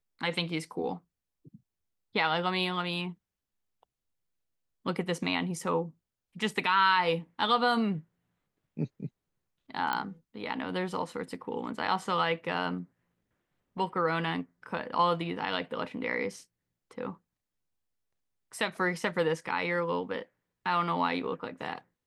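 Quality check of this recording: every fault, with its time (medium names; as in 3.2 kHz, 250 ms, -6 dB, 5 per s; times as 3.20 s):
9.93 s: pop -17 dBFS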